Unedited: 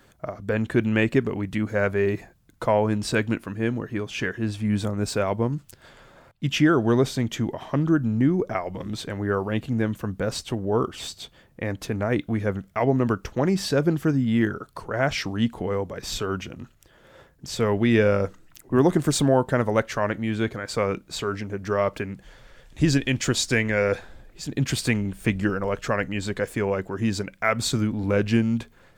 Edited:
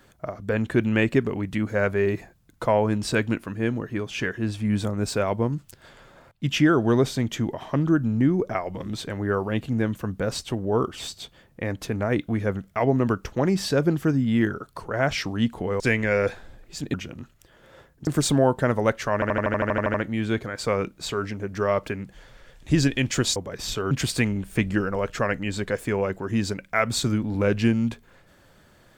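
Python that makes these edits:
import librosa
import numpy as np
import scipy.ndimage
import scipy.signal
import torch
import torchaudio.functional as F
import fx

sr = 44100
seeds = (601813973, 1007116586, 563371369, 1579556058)

y = fx.edit(x, sr, fx.swap(start_s=15.8, length_s=0.55, other_s=23.46, other_length_s=1.14),
    fx.cut(start_s=17.48, length_s=1.49),
    fx.stutter(start_s=20.04, slice_s=0.08, count=11), tone=tone)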